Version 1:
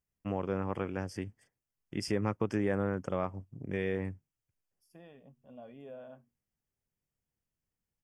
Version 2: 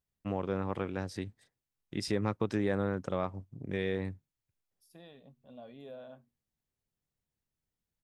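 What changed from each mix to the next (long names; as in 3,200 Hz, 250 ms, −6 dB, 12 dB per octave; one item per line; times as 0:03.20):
second voice: add high-shelf EQ 5,400 Hz +6.5 dB
master: remove Butterworth band-reject 3,900 Hz, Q 2.9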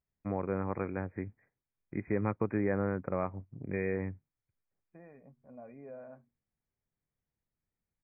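master: add linear-phase brick-wall low-pass 2,500 Hz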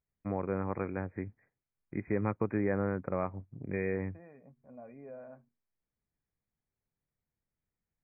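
second voice: entry −0.80 s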